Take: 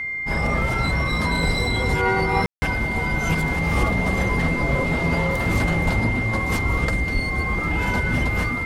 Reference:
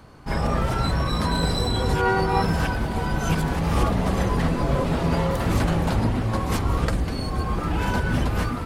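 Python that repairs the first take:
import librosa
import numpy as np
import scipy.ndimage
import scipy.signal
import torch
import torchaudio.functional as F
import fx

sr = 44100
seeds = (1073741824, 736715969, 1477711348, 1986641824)

y = fx.notch(x, sr, hz=2100.0, q=30.0)
y = fx.highpass(y, sr, hz=140.0, slope=24, at=(1.45, 1.57), fade=0.02)
y = fx.highpass(y, sr, hz=140.0, slope=24, at=(5.84, 5.96), fade=0.02)
y = fx.highpass(y, sr, hz=140.0, slope=24, at=(7.13, 7.25), fade=0.02)
y = fx.fix_ambience(y, sr, seeds[0], print_start_s=0.0, print_end_s=0.5, start_s=2.46, end_s=2.62)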